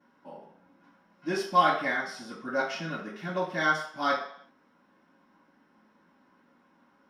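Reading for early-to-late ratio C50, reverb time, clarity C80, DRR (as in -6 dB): 5.0 dB, 0.60 s, 9.0 dB, -16.0 dB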